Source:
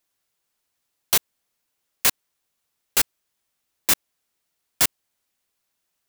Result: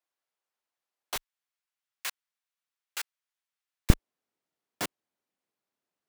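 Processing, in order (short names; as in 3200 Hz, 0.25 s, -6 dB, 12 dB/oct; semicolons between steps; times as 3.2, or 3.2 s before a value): HPF 620 Hz 12 dB/oct, from 1.16 s 1400 Hz, from 3.9 s 250 Hz; tilt -3.5 dB/oct; gain -6.5 dB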